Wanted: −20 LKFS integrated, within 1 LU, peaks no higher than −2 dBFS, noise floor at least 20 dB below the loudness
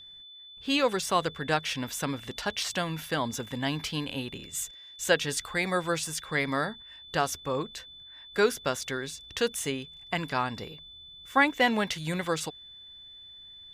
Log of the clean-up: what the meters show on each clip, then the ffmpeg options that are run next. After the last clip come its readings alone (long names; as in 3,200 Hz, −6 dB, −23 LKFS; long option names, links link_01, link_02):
interfering tone 3,500 Hz; level of the tone −46 dBFS; integrated loudness −29.5 LKFS; sample peak −9.0 dBFS; target loudness −20.0 LKFS
→ -af "bandreject=frequency=3500:width=30"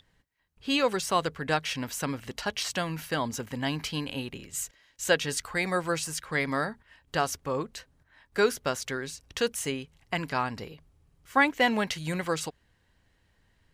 interfering tone none found; integrated loudness −30.0 LKFS; sample peak −9.5 dBFS; target loudness −20.0 LKFS
→ -af "volume=10dB,alimiter=limit=-2dB:level=0:latency=1"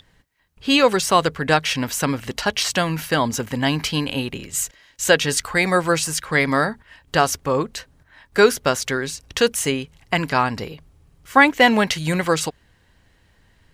integrated loudness −20.0 LKFS; sample peak −2.0 dBFS; background noise floor −59 dBFS